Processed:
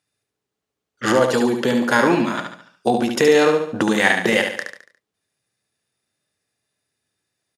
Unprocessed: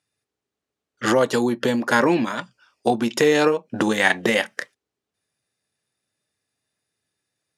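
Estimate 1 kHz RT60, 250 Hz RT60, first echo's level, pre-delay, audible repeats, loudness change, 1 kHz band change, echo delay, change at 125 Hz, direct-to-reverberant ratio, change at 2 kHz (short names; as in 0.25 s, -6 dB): none, none, -5.5 dB, none, 5, +2.5 dB, +2.5 dB, 71 ms, +2.0 dB, none, +2.5 dB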